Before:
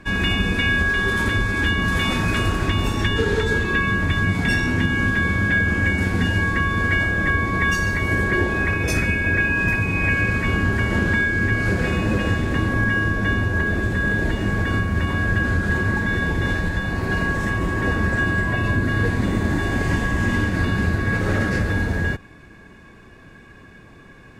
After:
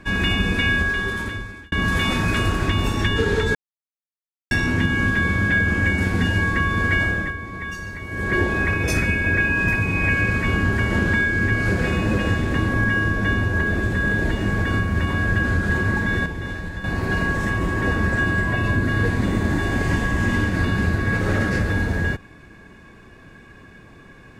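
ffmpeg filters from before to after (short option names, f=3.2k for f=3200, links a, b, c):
-filter_complex "[0:a]asplit=8[a][b][c][d][e][f][g][h];[a]atrim=end=1.72,asetpts=PTS-STARTPTS,afade=t=out:st=0.7:d=1.02[i];[b]atrim=start=1.72:end=3.55,asetpts=PTS-STARTPTS,afade=t=in:d=0.004:c=hsin,afade=t=out:st=1.826:d=0.004:c=hsin[j];[c]atrim=start=3.55:end=4.51,asetpts=PTS-STARTPTS,volume=0[k];[d]atrim=start=4.51:end=7.34,asetpts=PTS-STARTPTS,afade=t=in:d=0.004:c=hsin,afade=t=out:st=2.59:d=0.24:silence=0.281838[l];[e]atrim=start=7.34:end=8.12,asetpts=PTS-STARTPTS,volume=-11dB[m];[f]atrim=start=8.12:end=16.262,asetpts=PTS-STARTPTS,afade=t=in:d=0.24:silence=0.281838[n];[g]atrim=start=16.258:end=16.842,asetpts=PTS-STARTPTS,volume=-7.5dB[o];[h]atrim=start=16.838[p];[i][j][k][l][m][n]concat=n=6:v=0:a=1[q];[q][o]acrossfade=d=0.004:c1=hsin:c2=hsin[r];[r][p]acrossfade=d=0.004:c1=hsin:c2=hsin"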